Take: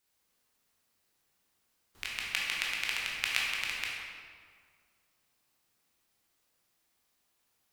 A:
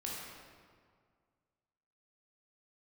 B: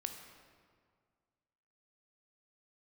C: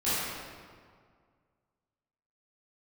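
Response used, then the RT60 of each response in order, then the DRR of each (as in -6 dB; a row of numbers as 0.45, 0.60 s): A; 1.9, 1.9, 1.9 s; -4.5, 5.0, -14.5 dB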